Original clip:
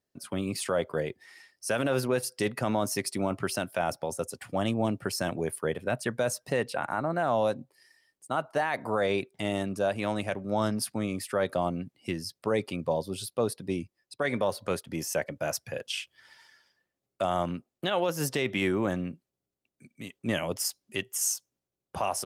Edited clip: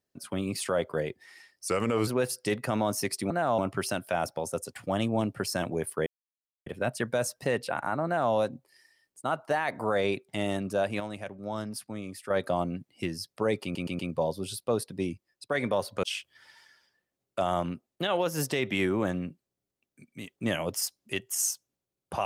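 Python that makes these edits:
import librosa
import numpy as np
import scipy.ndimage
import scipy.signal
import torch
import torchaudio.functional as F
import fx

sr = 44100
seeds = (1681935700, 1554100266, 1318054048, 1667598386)

y = fx.edit(x, sr, fx.speed_span(start_s=1.68, length_s=0.33, speed=0.84),
    fx.insert_silence(at_s=5.72, length_s=0.6),
    fx.duplicate(start_s=7.11, length_s=0.28, to_s=3.24),
    fx.clip_gain(start_s=10.06, length_s=1.3, db=-7.0),
    fx.stutter(start_s=12.69, slice_s=0.12, count=4),
    fx.cut(start_s=14.73, length_s=1.13), tone=tone)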